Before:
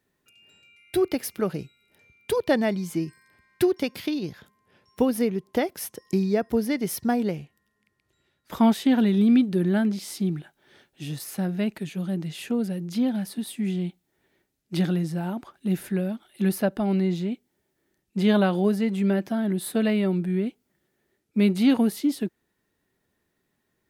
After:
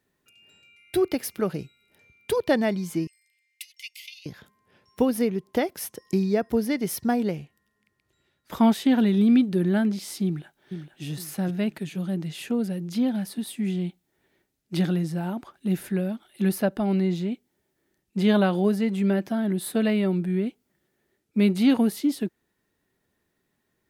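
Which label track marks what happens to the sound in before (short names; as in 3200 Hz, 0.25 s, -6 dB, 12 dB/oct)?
3.070000	4.260000	rippled Chebyshev high-pass 2000 Hz, ripple 6 dB
10.250000	11.040000	echo throw 0.46 s, feedback 35%, level -8 dB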